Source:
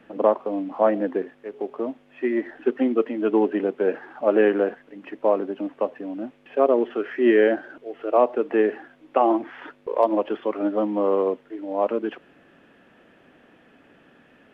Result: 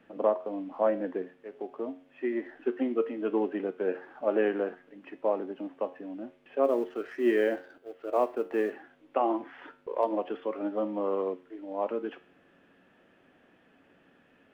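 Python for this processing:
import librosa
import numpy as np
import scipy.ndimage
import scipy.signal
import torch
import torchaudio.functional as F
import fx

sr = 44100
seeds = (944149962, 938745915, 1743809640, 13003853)

y = fx.law_mismatch(x, sr, coded='A', at=(6.63, 8.71), fade=0.02)
y = fx.comb_fb(y, sr, f0_hz=91.0, decay_s=0.41, harmonics='all', damping=0.0, mix_pct=60)
y = y * 10.0 ** (-2.0 / 20.0)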